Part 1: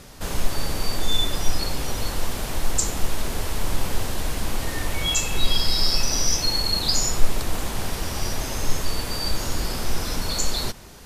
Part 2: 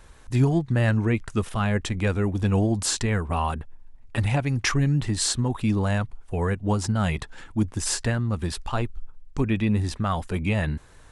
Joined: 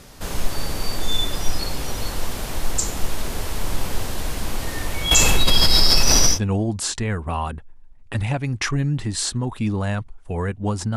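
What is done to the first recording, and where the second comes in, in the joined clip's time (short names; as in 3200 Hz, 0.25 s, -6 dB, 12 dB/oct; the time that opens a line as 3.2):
part 1
5.11–6.39 fast leveller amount 70%
6.34 switch to part 2 from 2.37 s, crossfade 0.10 s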